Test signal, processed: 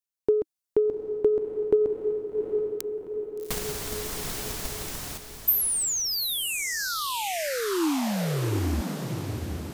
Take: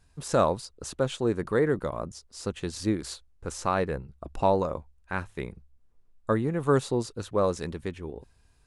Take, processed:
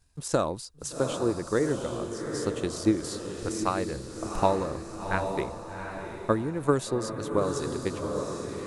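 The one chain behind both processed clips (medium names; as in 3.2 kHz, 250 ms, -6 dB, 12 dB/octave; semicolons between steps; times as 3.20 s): tone controls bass +1 dB, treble +7 dB; transient shaper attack +8 dB, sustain +4 dB; dynamic bell 320 Hz, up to +6 dB, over -37 dBFS, Q 3.4; on a send: echo that smears into a reverb 772 ms, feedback 46%, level -6 dB; on the sum: gain riding within 4 dB 2 s; trim -7 dB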